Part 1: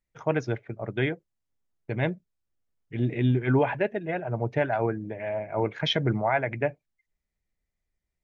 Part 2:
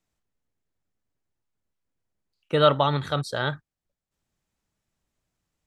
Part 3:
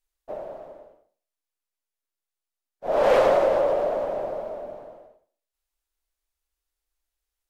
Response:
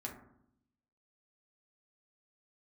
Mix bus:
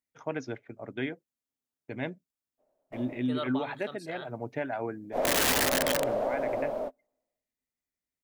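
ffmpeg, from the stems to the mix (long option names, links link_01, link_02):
-filter_complex "[0:a]highpass=frequency=240:poles=1,volume=-6.5dB,asplit=2[link_01][link_02];[1:a]highpass=250,adelay=750,volume=-17.5dB[link_03];[2:a]aeval=exprs='(mod(5.62*val(0)+1,2)-1)/5.62':channel_layout=same,adelay=2300,volume=0.5dB[link_04];[link_02]apad=whole_len=431910[link_05];[link_04][link_05]sidechaingate=range=-41dB:threshold=-58dB:ratio=16:detection=peak[link_06];[link_01][link_06]amix=inputs=2:normalize=0,equalizer=frequency=260:width_type=o:width=0.25:gain=11.5,acompressor=threshold=-26dB:ratio=5,volume=0dB[link_07];[link_03][link_07]amix=inputs=2:normalize=0,highshelf=frequency=5700:gain=7.5"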